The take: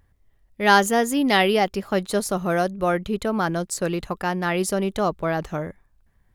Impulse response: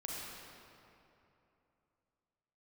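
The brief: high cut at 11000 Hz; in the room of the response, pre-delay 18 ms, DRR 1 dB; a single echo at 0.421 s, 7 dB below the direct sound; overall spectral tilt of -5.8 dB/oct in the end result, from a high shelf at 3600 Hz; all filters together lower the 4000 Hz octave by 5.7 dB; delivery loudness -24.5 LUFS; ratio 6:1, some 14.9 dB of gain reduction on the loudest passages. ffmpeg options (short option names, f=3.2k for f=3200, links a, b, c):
-filter_complex "[0:a]lowpass=11k,highshelf=f=3.6k:g=-5.5,equalizer=f=4k:t=o:g=-4.5,acompressor=threshold=-28dB:ratio=6,aecho=1:1:421:0.447,asplit=2[a][b];[1:a]atrim=start_sample=2205,adelay=18[c];[b][c]afir=irnorm=-1:irlink=0,volume=-2dB[d];[a][d]amix=inputs=2:normalize=0,volume=4.5dB"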